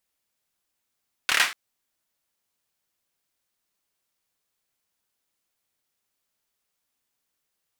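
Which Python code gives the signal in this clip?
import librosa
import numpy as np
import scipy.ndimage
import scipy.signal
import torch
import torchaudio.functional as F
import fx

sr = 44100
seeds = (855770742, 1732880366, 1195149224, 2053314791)

y = fx.drum_clap(sr, seeds[0], length_s=0.24, bursts=5, spacing_ms=27, hz=1900.0, decay_s=0.33)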